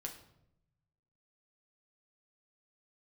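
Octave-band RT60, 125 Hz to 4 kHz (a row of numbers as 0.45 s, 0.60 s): 1.5 s, 1.1 s, 0.90 s, 0.70 s, 0.60 s, 0.55 s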